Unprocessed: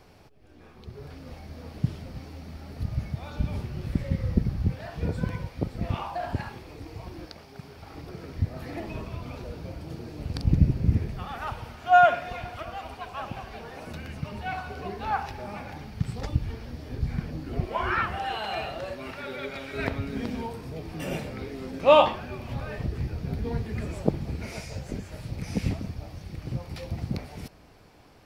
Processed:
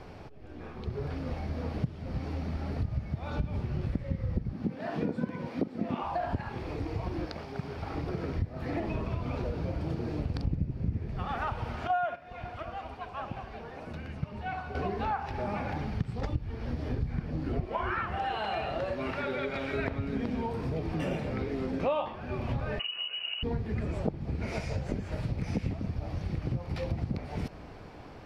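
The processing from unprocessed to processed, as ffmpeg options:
-filter_complex "[0:a]asettb=1/sr,asplit=3[a][b][c];[a]atrim=end=4.534[d];[b]atrim=start=4.53:end=6.03,asetpts=PTS-STARTPTS,afade=t=in:d=0.004:c=qsin,afade=t=out:st=1.496:d=0.004:c=qsin,highpass=f=240:t=q:w=2.6[e];[c]atrim=start=6.026[f];[d][e]acrossfade=d=0.004:c1=hsin:c2=qsin[g];[g][f]acrossfade=d=0.004:c1=qsin:c2=hsin,asettb=1/sr,asplit=3[h][i][j];[h]atrim=end=11.874[k];[i]atrim=start=11.87:end=14.75,asetpts=PTS-STARTPTS,afade=t=in:d=0.004:c=qsin,afade=t=out:st=2.876:d=0.004:c=qsin,agate=range=-10dB:threshold=-29dB:ratio=16:release=100:detection=peak[l];[j]atrim=start=14.746[m];[k][l]acrossfade=d=0.004:c1=hsin:c2=qsin[n];[n][m]acrossfade=d=0.004:c1=qsin:c2=hsin,asettb=1/sr,asplit=3[o][p][q];[o]atrim=end=22.794[r];[p]atrim=start=22.79:end=23.43,asetpts=PTS-STARTPTS,afade=t=in:d=0.004:c=qsin,afade=t=out:st=0.636:d=0.004:c=qsin,lowpass=f=2.6k:t=q:w=0.5098,lowpass=f=2.6k:t=q:w=0.6013,lowpass=f=2.6k:t=q:w=0.9,lowpass=f=2.6k:t=q:w=2.563,afreqshift=-3000[s];[q]atrim=start=23.426[t];[r][s]acrossfade=d=0.004:c1=hsin:c2=qsin[u];[u][t]acrossfade=d=0.004:c1=qsin:c2=hsin,acompressor=threshold=-37dB:ratio=6,aemphasis=mode=reproduction:type=75fm,volume=7.5dB"

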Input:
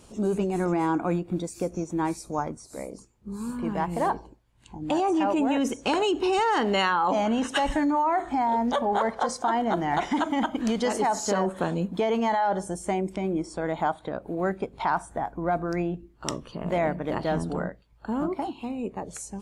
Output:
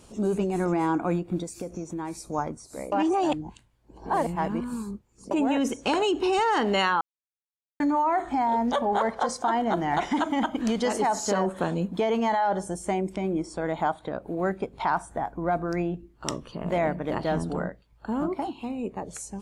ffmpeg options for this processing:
-filter_complex "[0:a]asettb=1/sr,asplit=3[a][b][c];[a]atrim=end=1.434[d];[b]atrim=start=1.43:end=2.2,asetpts=PTS-STARTPTS,afade=t=in:d=0.004:c=qsin,afade=t=out:st=0.766:d=0.004:c=qsin,acompressor=threshold=-29dB:ratio=6:attack=3.2:release=140:knee=1:detection=peak[e];[c]atrim=start=2.196[f];[d][e]acrossfade=d=0.004:c1=hsin:c2=qsin[g];[g][f]acrossfade=d=0.004:c1=qsin:c2=hsin,asplit=5[h][i][j][k][l];[h]atrim=end=2.922[m];[i]atrim=start=2.918:end=5.312,asetpts=PTS-STARTPTS,areverse[n];[j]atrim=start=5.308:end=7.01,asetpts=PTS-STARTPTS,afade=t=out:st=1.698:d=0.004:c=hsin[o];[k]atrim=start=7.01:end=7.8,asetpts=PTS-STARTPTS,volume=0[p];[l]atrim=start=7.8,asetpts=PTS-STARTPTS,afade=t=in:d=0.004:c=hsin[q];[m][n]acrossfade=d=0.004:c1=hsin:c2=hsin[r];[o][p][q]concat=n=3:v=0:a=1[s];[r][s]acrossfade=d=0.004:c1=hsin:c2=hsin"

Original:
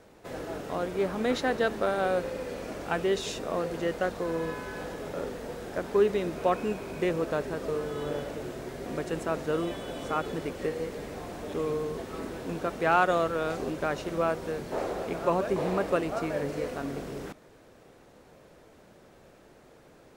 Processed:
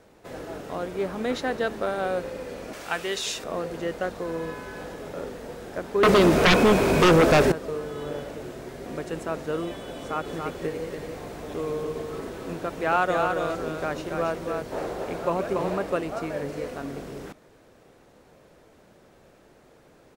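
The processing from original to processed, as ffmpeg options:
-filter_complex "[0:a]asettb=1/sr,asplit=3[a][b][c];[a]atrim=end=2.734[d];[b]atrim=start=2.73:end=3.44,asetpts=PTS-STARTPTS,afade=t=in:d=0.004:c=qsin,afade=t=out:st=0.706:d=0.004:c=qsin,tiltshelf=f=840:g=-7.5[e];[c]atrim=start=3.436[f];[d][e]acrossfade=d=0.004:c1=hsin:c2=qsin[g];[g][f]acrossfade=d=0.004:c1=qsin:c2=hsin,asettb=1/sr,asplit=3[h][i][j];[h]atrim=end=6.034[k];[i]atrim=start=6.03:end=7.52,asetpts=PTS-STARTPTS,afade=t=in:d=0.004:c=qsin,afade=t=out:st=1.486:d=0.004:c=qsin,aeval=exprs='0.237*sin(PI/2*5.01*val(0)/0.237)':c=same[l];[j]atrim=start=7.516[m];[k][l]acrossfade=d=0.004:c1=hsin:c2=qsin[n];[n][m]acrossfade=d=0.004:c1=qsin:c2=hsin,asplit=3[o][p][q];[o]afade=t=out:st=10.26:d=0.02[r];[p]aecho=1:1:282:0.596,afade=t=in:st=10.26:d=0.02,afade=t=out:st=15.76:d=0.02[s];[q]afade=t=in:st=15.76:d=0.02[t];[r][s][t]amix=inputs=3:normalize=0"

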